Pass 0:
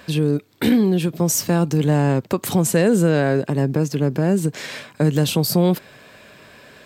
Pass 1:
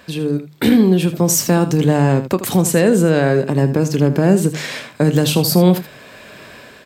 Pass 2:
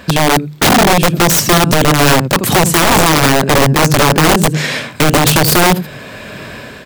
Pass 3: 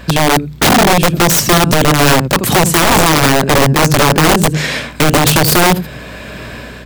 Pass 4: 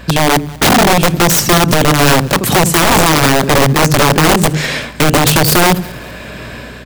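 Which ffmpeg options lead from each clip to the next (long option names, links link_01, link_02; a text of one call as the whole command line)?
ffmpeg -i in.wav -af "bandreject=frequency=50:width_type=h:width=6,bandreject=frequency=100:width_type=h:width=6,bandreject=frequency=150:width_type=h:width=6,dynaudnorm=framelen=200:gausssize=5:maxgain=9dB,aecho=1:1:27|79:0.168|0.237,volume=-1dB" out.wav
ffmpeg -i in.wav -af "bass=frequency=250:gain=6,treble=frequency=4000:gain=-2,acompressor=threshold=-13dB:ratio=12,aeval=exprs='(mod(4.47*val(0)+1,2)-1)/4.47':channel_layout=same,volume=9dB" out.wav
ffmpeg -i in.wav -af "aeval=exprs='val(0)+0.02*(sin(2*PI*60*n/s)+sin(2*PI*2*60*n/s)/2+sin(2*PI*3*60*n/s)/3+sin(2*PI*4*60*n/s)/4+sin(2*PI*5*60*n/s)/5)':channel_layout=same" out.wav
ffmpeg -i in.wav -af "aecho=1:1:192|384|576:0.075|0.036|0.0173" out.wav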